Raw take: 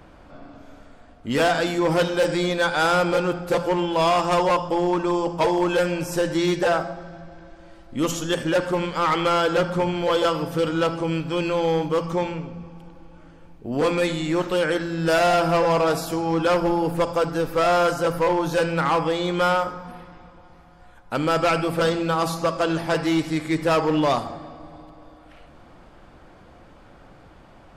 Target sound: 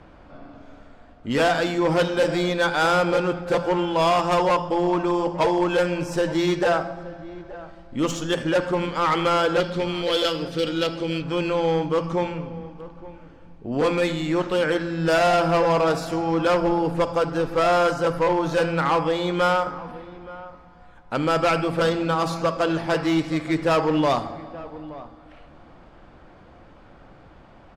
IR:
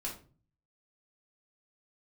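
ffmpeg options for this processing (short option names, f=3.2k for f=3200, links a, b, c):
-filter_complex "[0:a]asettb=1/sr,asplit=3[a][b][c];[a]atrim=end=9.604[d];[b]atrim=start=9.6:end=11.22,asetpts=PTS-STARTPTS,afade=t=in:d=0.004:c=qsin,afade=t=out:st=1.616:d=0.004:c=qsin,equalizer=f=125:t=o:w=1:g=-6,equalizer=f=1k:t=o:w=1:g=-10,equalizer=f=4k:t=o:w=1:g=9[e];[c]atrim=start=11.216[f];[d][e]acrossfade=d=0.004:c1=hsin:c2=qsin[g];[g][f]acrossfade=d=0.004:c1=qsin:c2=hsin,asplit=2[h][i];[i]adelay=874.6,volume=-17dB,highshelf=f=4k:g=-19.7[j];[h][j]amix=inputs=2:normalize=0,adynamicsmooth=sensitivity=3:basefreq=6.4k"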